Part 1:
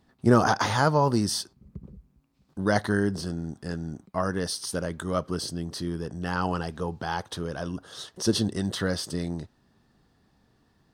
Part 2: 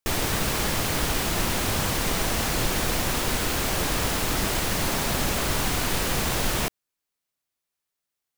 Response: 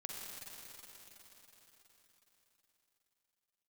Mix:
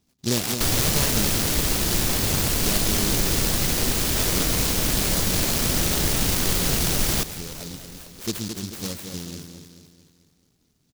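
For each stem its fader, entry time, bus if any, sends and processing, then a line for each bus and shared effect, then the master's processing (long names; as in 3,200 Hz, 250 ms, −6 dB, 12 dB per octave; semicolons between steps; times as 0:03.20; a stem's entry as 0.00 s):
−5.0 dB, 0.00 s, no send, echo send −6.5 dB, Butterworth low-pass 6,200 Hz
+1.5 dB, 0.55 s, send −9 dB, no echo send, no processing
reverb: on, RT60 4.6 s, pre-delay 41 ms
echo: repeating echo 218 ms, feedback 49%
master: short delay modulated by noise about 4,900 Hz, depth 0.32 ms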